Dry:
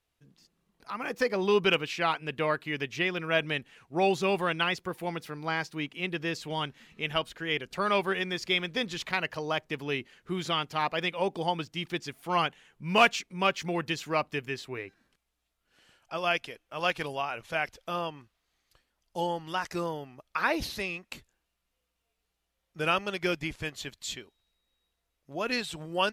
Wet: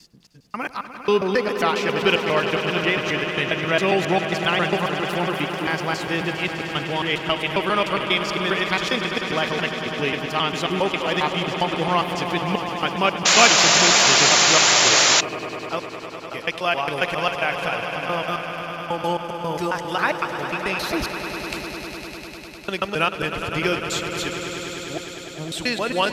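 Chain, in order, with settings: slices played last to first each 135 ms, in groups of 4; in parallel at -0.5 dB: compression, threshold -36 dBFS, peak gain reduction 18.5 dB; on the sum: echo with a slow build-up 101 ms, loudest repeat 5, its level -11.5 dB; painted sound noise, 13.25–15.21 s, 500–7400 Hz -20 dBFS; trim +4 dB

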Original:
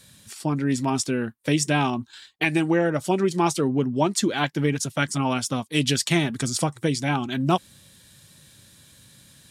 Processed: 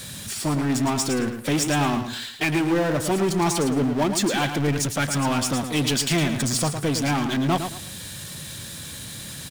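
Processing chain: power-law waveshaper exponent 0.5; on a send: feedback delay 110 ms, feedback 27%, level -8 dB; on the sum: trim -6.5 dB

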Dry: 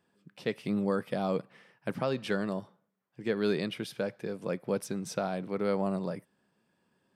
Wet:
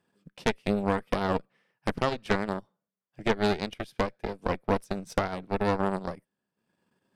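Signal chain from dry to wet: transient shaper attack +5 dB, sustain -11 dB; Chebyshev shaper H 6 -10 dB, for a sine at -11.5 dBFS; trim -1 dB

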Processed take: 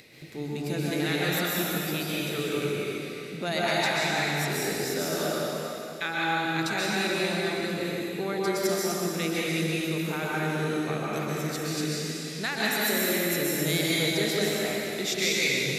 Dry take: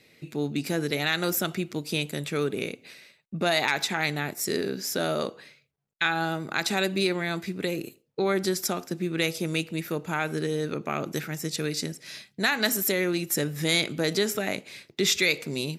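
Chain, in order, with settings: upward compressor, threshold -36 dBFS; plate-style reverb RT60 3 s, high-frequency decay 1×, pre-delay 115 ms, DRR -6.5 dB; trim -7 dB

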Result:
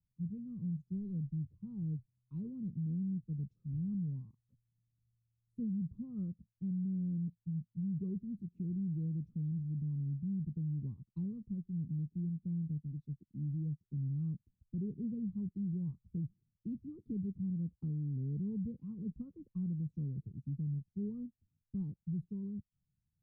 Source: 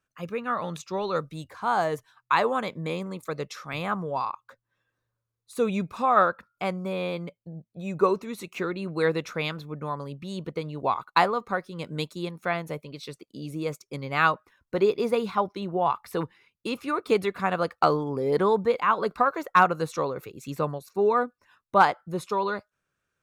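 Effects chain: inverse Chebyshev low-pass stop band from 620 Hz, stop band 60 dB; peak limiter -36.5 dBFS, peak gain reduction 8 dB; trim +4.5 dB

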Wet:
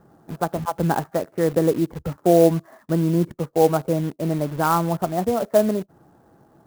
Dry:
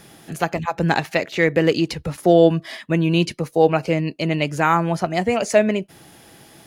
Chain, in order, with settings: steep low-pass 1.4 kHz 36 dB/octave; in parallel at -6 dB: bit crusher 5-bit; on the sum: sampling jitter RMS 0.03 ms; trim -5 dB

